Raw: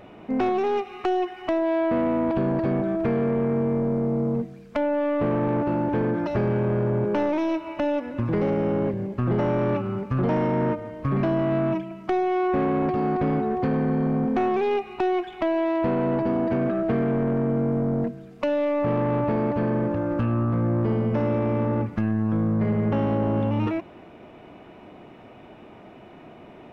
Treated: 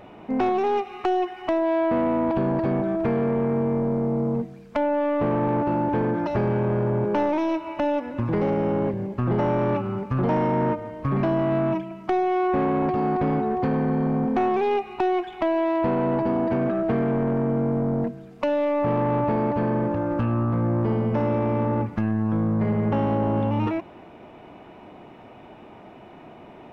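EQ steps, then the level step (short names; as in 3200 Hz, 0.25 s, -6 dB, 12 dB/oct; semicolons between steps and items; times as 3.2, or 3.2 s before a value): bell 880 Hz +4.5 dB 0.49 oct; 0.0 dB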